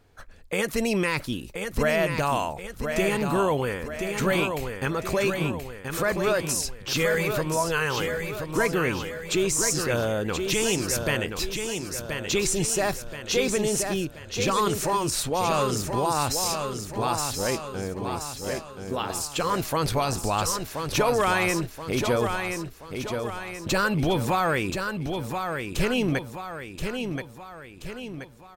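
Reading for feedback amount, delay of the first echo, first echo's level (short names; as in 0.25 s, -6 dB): 48%, 1.028 s, -6.0 dB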